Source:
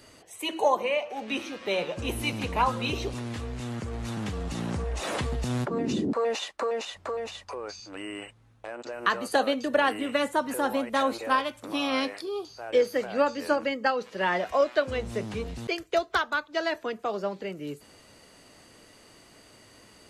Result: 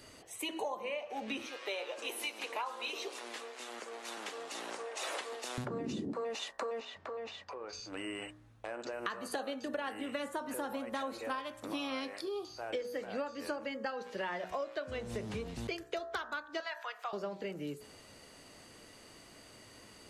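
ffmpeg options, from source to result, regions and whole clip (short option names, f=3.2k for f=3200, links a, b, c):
-filter_complex "[0:a]asettb=1/sr,asplit=3[a][b][c];[a]atrim=end=1.464[d];[b]atrim=start=1.46:end=5.58,asetpts=PTS-STARTPTS,afade=t=in:d=0.004:c=qsin,afade=t=out:st=4.116:d=0.004:c=qsin,highpass=f=360:w=0.5412,highpass=f=360:w=1.3066,lowshelf=f=490:g=-7[e];[c]atrim=start=5.576[f];[d][e]acrossfade=d=0.004:c1=hsin:c2=qsin[g];[g][f]acrossfade=d=0.004:c1=qsin:c2=hsin,asettb=1/sr,asplit=3[h][i][j];[h]atrim=end=6.804[k];[i]atrim=start=6.8:end=7.73,asetpts=PTS-STARTPTS,afade=t=in:d=0.004:c=qsin,afade=t=out:st=0.926:d=0.004:c=qsin,acompressor=threshold=-42dB:ratio=2:attack=3.2:release=140:knee=1:detection=peak,highpass=120,lowpass=4.3k[l];[j]atrim=start=7.726[m];[k][l]acrossfade=d=0.004:c1=hsin:c2=qsin[n];[n][m]acrossfade=d=0.004:c1=qsin:c2=hsin,asettb=1/sr,asplit=3[o][p][q];[o]atrim=end=16.604[r];[p]atrim=start=16.6:end=17.13,asetpts=PTS-STARTPTS,afade=t=in:d=0.004:c=qsin,afade=t=out:st=0.526:d=0.004:c=qsin,highpass=f=810:w=0.5412,highpass=f=810:w=1.3066,equalizer=f=9k:t=o:w=1.4:g=-8,acompressor=mode=upward:threshold=-35dB:ratio=2.5:attack=3.2:release=140:knee=2.83:detection=peak[s];[q]atrim=start=17.126[t];[r][s]acrossfade=d=0.004:c1=hsin:c2=qsin[u];[u][t]acrossfade=d=0.004:c1=qsin:c2=hsin,bandreject=f=61.03:t=h:w=4,bandreject=f=122.06:t=h:w=4,bandreject=f=183.09:t=h:w=4,bandreject=f=244.12:t=h:w=4,bandreject=f=305.15:t=h:w=4,bandreject=f=366.18:t=h:w=4,bandreject=f=427.21:t=h:w=4,bandreject=f=488.24:t=h:w=4,bandreject=f=549.27:t=h:w=4,bandreject=f=610.3:t=h:w=4,bandreject=f=671.33:t=h:w=4,bandreject=f=732.36:t=h:w=4,bandreject=f=793.39:t=h:w=4,bandreject=f=854.42:t=h:w=4,bandreject=f=915.45:t=h:w=4,bandreject=f=976.48:t=h:w=4,bandreject=f=1.03751k:t=h:w=4,bandreject=f=1.09854k:t=h:w=4,bandreject=f=1.15957k:t=h:w=4,bandreject=f=1.2206k:t=h:w=4,bandreject=f=1.28163k:t=h:w=4,bandreject=f=1.34266k:t=h:w=4,bandreject=f=1.40369k:t=h:w=4,bandreject=f=1.46472k:t=h:w=4,bandreject=f=1.52575k:t=h:w=4,bandreject=f=1.58678k:t=h:w=4,bandreject=f=1.64781k:t=h:w=4,bandreject=f=1.70884k:t=h:w=4,bandreject=f=1.76987k:t=h:w=4,bandreject=f=1.8309k:t=h:w=4,bandreject=f=1.89193k:t=h:w=4,acompressor=threshold=-34dB:ratio=6,volume=-1.5dB"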